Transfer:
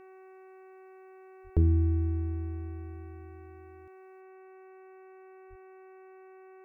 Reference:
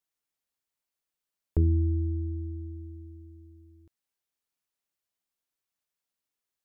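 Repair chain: de-hum 377.6 Hz, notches 7; 1.43–1.55 HPF 140 Hz 24 dB/oct; 5.49–5.61 HPF 140 Hz 24 dB/oct; gain 0 dB, from 4.21 s +6 dB

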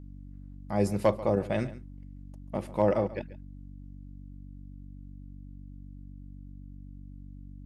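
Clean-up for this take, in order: clip repair -12 dBFS; de-hum 47.9 Hz, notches 6; inverse comb 0.138 s -17 dB

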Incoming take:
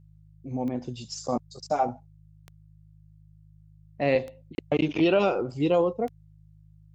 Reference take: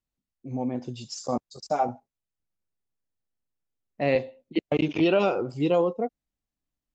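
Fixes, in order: de-click; de-hum 51.9 Hz, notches 3; interpolate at 4.55, 31 ms

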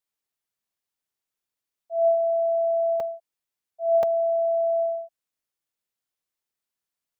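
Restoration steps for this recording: interpolate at 1.49/3/4.03, 2.6 ms

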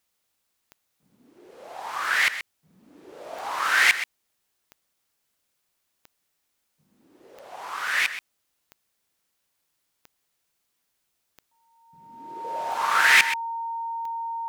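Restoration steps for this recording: clip repair -9 dBFS; de-click; notch 920 Hz, Q 30; inverse comb 0.128 s -12 dB

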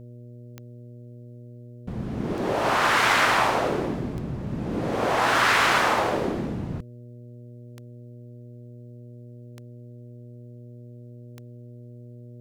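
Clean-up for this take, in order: de-click; de-hum 120.6 Hz, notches 5

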